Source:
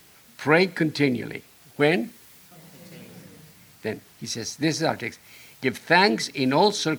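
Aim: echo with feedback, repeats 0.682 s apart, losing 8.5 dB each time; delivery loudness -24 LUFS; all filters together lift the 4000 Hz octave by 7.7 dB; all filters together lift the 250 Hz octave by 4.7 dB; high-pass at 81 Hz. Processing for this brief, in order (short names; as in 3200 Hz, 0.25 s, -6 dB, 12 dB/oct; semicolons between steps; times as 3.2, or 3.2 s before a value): HPF 81 Hz; bell 250 Hz +6 dB; bell 4000 Hz +8.5 dB; feedback echo 0.682 s, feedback 38%, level -8.5 dB; gain -3.5 dB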